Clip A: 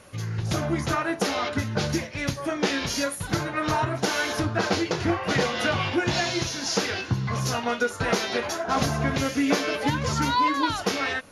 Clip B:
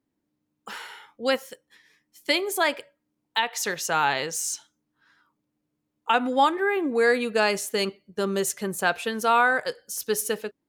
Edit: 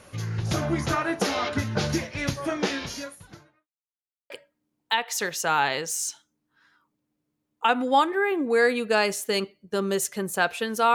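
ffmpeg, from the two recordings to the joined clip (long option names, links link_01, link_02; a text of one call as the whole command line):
ffmpeg -i cue0.wav -i cue1.wav -filter_complex "[0:a]apad=whole_dur=10.94,atrim=end=10.94,asplit=2[link_01][link_02];[link_01]atrim=end=3.68,asetpts=PTS-STARTPTS,afade=type=out:start_time=2.54:duration=1.14:curve=qua[link_03];[link_02]atrim=start=3.68:end=4.3,asetpts=PTS-STARTPTS,volume=0[link_04];[1:a]atrim=start=2.75:end=9.39,asetpts=PTS-STARTPTS,afade=type=in:duration=0.004:curve=hsin[link_05];[link_03][link_04][link_05]concat=n=3:v=0:a=1" out.wav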